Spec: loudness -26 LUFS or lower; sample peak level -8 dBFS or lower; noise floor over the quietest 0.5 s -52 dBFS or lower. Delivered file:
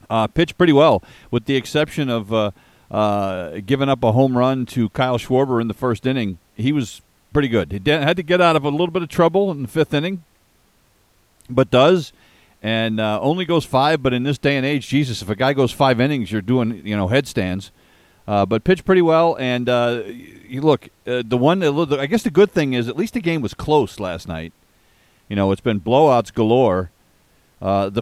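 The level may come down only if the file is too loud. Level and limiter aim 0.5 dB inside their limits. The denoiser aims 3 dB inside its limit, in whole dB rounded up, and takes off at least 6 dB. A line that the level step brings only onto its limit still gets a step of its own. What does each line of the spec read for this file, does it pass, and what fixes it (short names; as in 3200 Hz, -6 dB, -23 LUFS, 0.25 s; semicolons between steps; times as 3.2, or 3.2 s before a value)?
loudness -18.5 LUFS: fail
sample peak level -1.5 dBFS: fail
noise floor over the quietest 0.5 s -58 dBFS: OK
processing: gain -8 dB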